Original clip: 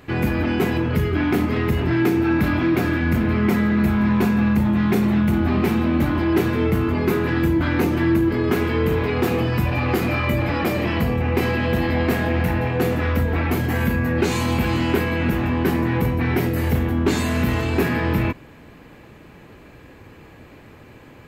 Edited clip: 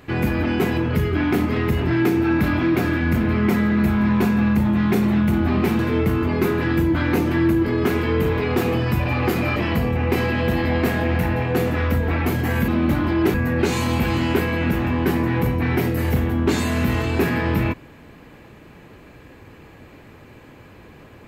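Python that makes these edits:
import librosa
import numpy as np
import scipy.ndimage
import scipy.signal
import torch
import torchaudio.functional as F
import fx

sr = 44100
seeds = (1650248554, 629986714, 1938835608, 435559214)

y = fx.edit(x, sr, fx.move(start_s=5.79, length_s=0.66, to_s=13.93),
    fx.cut(start_s=10.22, length_s=0.59), tone=tone)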